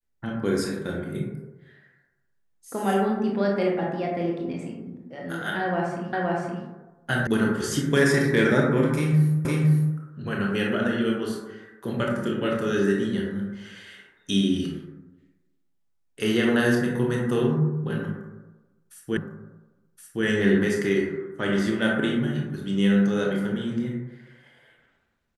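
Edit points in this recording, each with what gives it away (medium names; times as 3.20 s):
6.13 s: repeat of the last 0.52 s
7.27 s: sound stops dead
9.45 s: repeat of the last 0.51 s
19.17 s: repeat of the last 1.07 s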